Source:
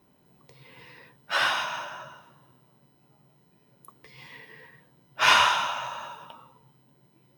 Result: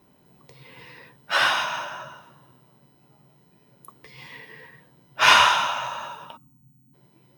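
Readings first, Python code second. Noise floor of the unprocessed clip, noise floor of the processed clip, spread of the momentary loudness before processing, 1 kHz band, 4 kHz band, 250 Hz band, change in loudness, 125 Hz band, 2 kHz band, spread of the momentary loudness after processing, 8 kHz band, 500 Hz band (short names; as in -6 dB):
-63 dBFS, -60 dBFS, 21 LU, +4.0 dB, +4.0 dB, +4.0 dB, +4.0 dB, +4.0 dB, +4.0 dB, 21 LU, +4.0 dB, +4.0 dB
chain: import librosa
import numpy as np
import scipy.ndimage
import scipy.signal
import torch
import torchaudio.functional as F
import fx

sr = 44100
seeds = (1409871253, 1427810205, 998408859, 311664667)

y = fx.spec_box(x, sr, start_s=6.37, length_s=0.57, low_hz=320.0, high_hz=6000.0, gain_db=-28)
y = y * 10.0 ** (4.0 / 20.0)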